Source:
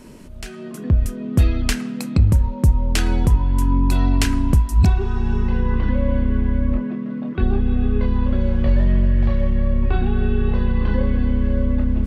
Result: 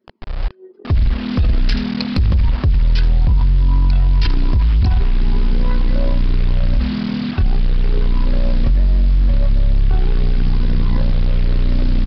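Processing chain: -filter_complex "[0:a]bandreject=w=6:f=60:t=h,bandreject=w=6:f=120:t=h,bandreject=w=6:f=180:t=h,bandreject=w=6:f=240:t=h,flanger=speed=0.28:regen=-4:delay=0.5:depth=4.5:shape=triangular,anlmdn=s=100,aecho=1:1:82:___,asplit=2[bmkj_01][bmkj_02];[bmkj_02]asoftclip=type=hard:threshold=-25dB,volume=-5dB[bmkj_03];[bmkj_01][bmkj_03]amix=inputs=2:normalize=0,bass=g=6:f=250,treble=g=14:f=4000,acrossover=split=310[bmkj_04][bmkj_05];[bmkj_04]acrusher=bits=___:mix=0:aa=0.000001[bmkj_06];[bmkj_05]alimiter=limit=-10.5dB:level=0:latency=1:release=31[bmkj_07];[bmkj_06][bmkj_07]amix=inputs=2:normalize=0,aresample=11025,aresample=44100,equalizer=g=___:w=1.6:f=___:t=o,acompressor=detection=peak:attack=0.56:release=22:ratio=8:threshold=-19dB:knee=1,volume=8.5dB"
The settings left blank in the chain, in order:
0.0668, 5, -8, 250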